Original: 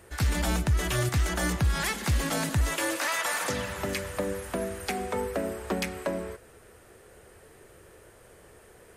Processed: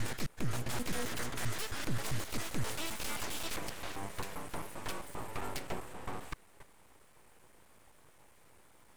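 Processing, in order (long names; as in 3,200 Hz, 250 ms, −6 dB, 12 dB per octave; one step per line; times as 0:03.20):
slices reordered back to front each 132 ms, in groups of 3
full-wave rectification
level −6.5 dB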